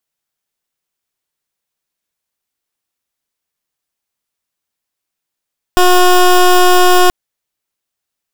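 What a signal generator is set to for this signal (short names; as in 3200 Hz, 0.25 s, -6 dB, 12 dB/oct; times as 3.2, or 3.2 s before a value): pulse 361 Hz, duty 17% -7 dBFS 1.33 s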